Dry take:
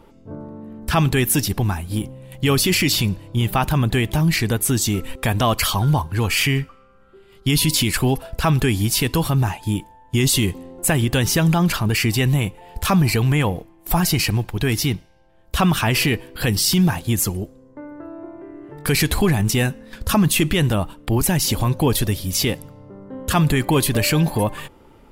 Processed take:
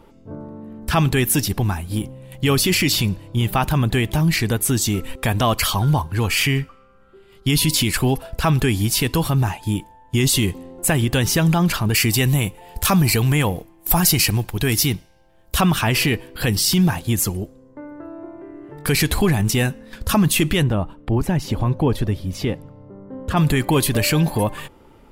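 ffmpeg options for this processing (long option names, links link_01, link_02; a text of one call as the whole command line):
ffmpeg -i in.wav -filter_complex "[0:a]asettb=1/sr,asplit=3[link_01][link_02][link_03];[link_01]atrim=end=11.944[link_04];[link_02]atrim=start=11.94:end=15.61,asetpts=PTS-STARTPTS,afade=type=in:duration=0.004:curve=qsin,afade=type=out:start_time=3.666:duration=0.004:curve=qsin,highshelf=frequency=5900:gain=9[link_05];[link_03]atrim=start=15.606[link_06];[link_04][link_05]acrossfade=duration=0.004:curve1=hsin:curve2=qsin[link_07];[link_07][link_06]acrossfade=duration=0.004:curve1=qsin:curve2=hsin,asplit=3[link_08][link_09][link_10];[link_08]afade=type=out:start_time=20.62:duration=0.02[link_11];[link_09]lowpass=frequency=1200:poles=1,afade=type=in:start_time=20.62:duration=0.02,afade=type=out:start_time=23.36:duration=0.02[link_12];[link_10]afade=type=in:start_time=23.36:duration=0.02[link_13];[link_11][link_12][link_13]amix=inputs=3:normalize=0" out.wav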